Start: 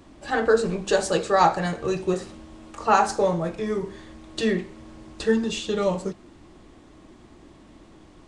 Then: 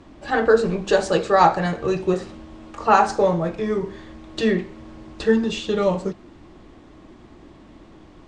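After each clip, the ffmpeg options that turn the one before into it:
-af "lowpass=8.3k,highshelf=f=6.2k:g=-9.5,volume=3.5dB"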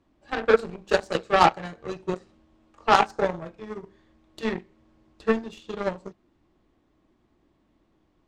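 -af "aeval=exprs='0.891*(cos(1*acos(clip(val(0)/0.891,-1,1)))-cos(1*PI/2))+0.112*(cos(7*acos(clip(val(0)/0.891,-1,1)))-cos(7*PI/2))':c=same,volume=-2dB"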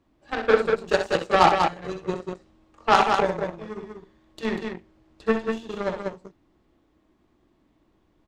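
-af "aecho=1:1:64.14|192.4:0.398|0.562"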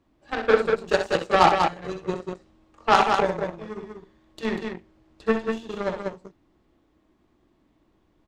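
-af anull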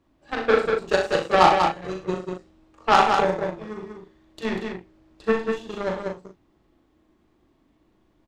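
-filter_complex "[0:a]asplit=2[a][b];[b]adelay=38,volume=-5.5dB[c];[a][c]amix=inputs=2:normalize=0"

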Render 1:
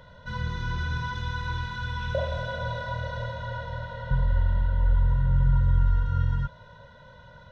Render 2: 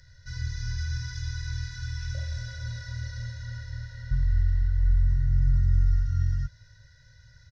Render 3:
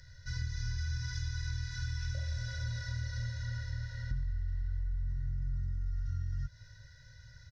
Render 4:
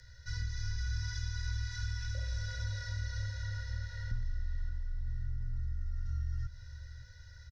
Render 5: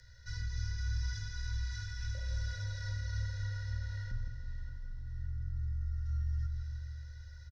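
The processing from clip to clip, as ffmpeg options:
-af "firequalizer=gain_entry='entry(120,0);entry(180,-24);entry(300,-17);entry(480,-23);entry(690,-24);entry(1100,-28);entry(1700,1);entry(3200,-16);entry(4900,14);entry(10000,-3)':delay=0.05:min_phase=1"
-af "alimiter=limit=-19.5dB:level=0:latency=1:release=47,acompressor=threshold=-32dB:ratio=6"
-af "aecho=1:1:576|1152|1728|2304:0.211|0.0824|0.0321|0.0125,afreqshift=-16"
-filter_complex "[0:a]asplit=2[a][b];[b]adelay=161,lowpass=f=1k:p=1,volume=-4dB,asplit=2[c][d];[d]adelay=161,lowpass=f=1k:p=1,volume=0.53,asplit=2[e][f];[f]adelay=161,lowpass=f=1k:p=1,volume=0.53,asplit=2[g][h];[h]adelay=161,lowpass=f=1k:p=1,volume=0.53,asplit=2[i][j];[j]adelay=161,lowpass=f=1k:p=1,volume=0.53,asplit=2[k][l];[l]adelay=161,lowpass=f=1k:p=1,volume=0.53,asplit=2[m][n];[n]adelay=161,lowpass=f=1k:p=1,volume=0.53[o];[a][c][e][g][i][k][m][o]amix=inputs=8:normalize=0,volume=-2.5dB"

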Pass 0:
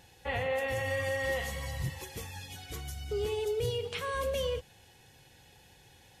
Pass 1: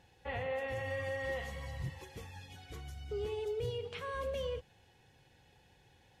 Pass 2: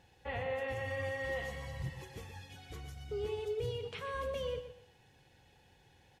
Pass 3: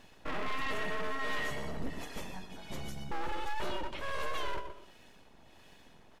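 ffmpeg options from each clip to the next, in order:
-af "lowpass=f=2.8k:p=1,volume=-5dB"
-af "aecho=1:1:122|244|366:0.299|0.0866|0.0251"
-filter_complex "[0:a]acrossover=split=1300[a][b];[a]aeval=exprs='abs(val(0))':c=same[c];[b]tremolo=f=1.4:d=0.63[d];[c][d]amix=inputs=2:normalize=0,aeval=exprs='0.0422*sin(PI/2*1.78*val(0)/0.0422)':c=same"

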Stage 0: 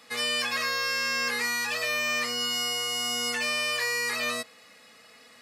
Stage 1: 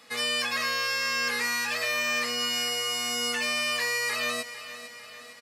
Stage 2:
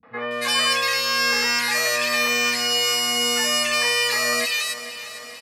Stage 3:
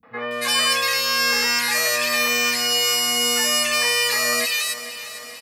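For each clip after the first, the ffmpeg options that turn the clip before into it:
-af "aecho=1:1:451|902|1353|1804|2255|2706:0.211|0.12|0.0687|0.0391|0.0223|0.0127"
-filter_complex "[0:a]acrossover=split=190|1800[a][b][c];[b]adelay=30[d];[c]adelay=310[e];[a][d][e]amix=inputs=3:normalize=0,volume=8.5dB"
-af "highshelf=f=10k:g=9.5"

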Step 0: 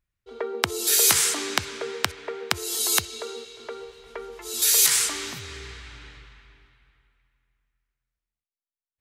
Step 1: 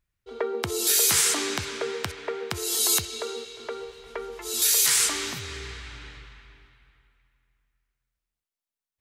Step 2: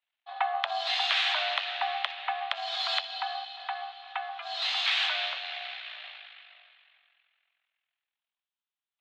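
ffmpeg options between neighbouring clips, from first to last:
-af "alimiter=limit=-13.5dB:level=0:latency=1:release=12,volume=2dB"
-af "aeval=exprs='if(lt(val(0),0),0.447*val(0),val(0))':c=same,highpass=f=360:t=q:w=0.5412,highpass=f=360:t=q:w=1.307,lowpass=f=3.5k:t=q:w=0.5176,lowpass=f=3.5k:t=q:w=0.7071,lowpass=f=3.5k:t=q:w=1.932,afreqshift=320,aexciter=amount=1.3:drive=7.1:freq=2.9k,volume=3dB"

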